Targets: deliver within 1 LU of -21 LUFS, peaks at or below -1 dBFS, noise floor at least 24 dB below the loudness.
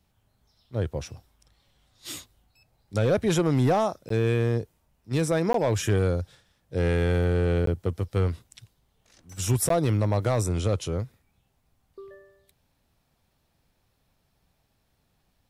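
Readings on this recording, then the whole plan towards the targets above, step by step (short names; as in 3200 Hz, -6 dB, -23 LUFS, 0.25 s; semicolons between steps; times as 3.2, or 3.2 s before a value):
clipped 0.6%; flat tops at -16.0 dBFS; dropouts 4; longest dropout 13 ms; loudness -26.0 LUFS; peak -16.0 dBFS; loudness target -21.0 LUFS
-> clip repair -16 dBFS; interpolate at 4.09/5.53/7.66/9.69, 13 ms; gain +5 dB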